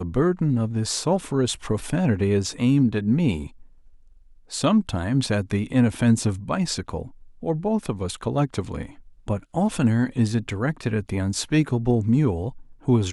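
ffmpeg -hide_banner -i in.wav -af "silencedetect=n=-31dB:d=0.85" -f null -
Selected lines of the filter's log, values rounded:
silence_start: 3.47
silence_end: 4.52 | silence_duration: 1.05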